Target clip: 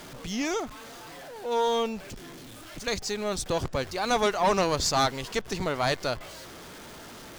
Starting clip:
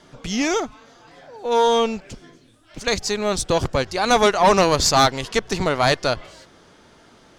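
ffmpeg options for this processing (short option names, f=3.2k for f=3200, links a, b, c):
-af "aeval=exprs='val(0)+0.5*0.0282*sgn(val(0))':c=same,volume=-9dB"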